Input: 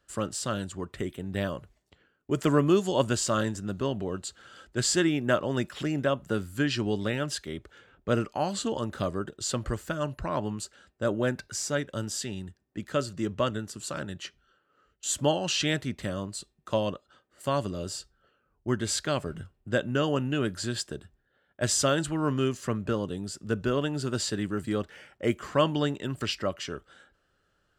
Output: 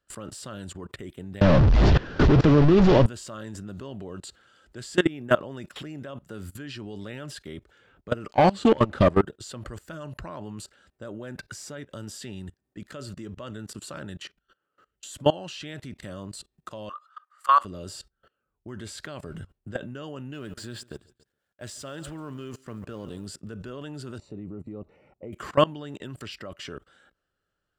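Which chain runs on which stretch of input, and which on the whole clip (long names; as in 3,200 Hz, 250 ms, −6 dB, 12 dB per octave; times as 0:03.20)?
0:01.41–0:03.06: linear delta modulator 32 kbit/s, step −19.5 dBFS + spectral tilt −3 dB per octave + notch filter 2,200 Hz, Q 21
0:08.31–0:09.22: leveller curve on the samples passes 3 + high-frequency loss of the air 69 metres
0:16.89–0:17.65: high-pass with resonance 1,200 Hz, resonance Q 13 + high-shelf EQ 9,200 Hz −4 dB
0:20.33–0:23.27: mu-law and A-law mismatch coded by A + repeating echo 140 ms, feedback 38%, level −22 dB
0:24.18–0:25.33: moving average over 27 samples + downward compressor 1.5 to 1, threshold −34 dBFS
whole clip: output level in coarse steps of 22 dB; dynamic equaliser 6,500 Hz, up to −5 dB, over −57 dBFS, Q 1.1; notch filter 6,300 Hz, Q 26; level +6.5 dB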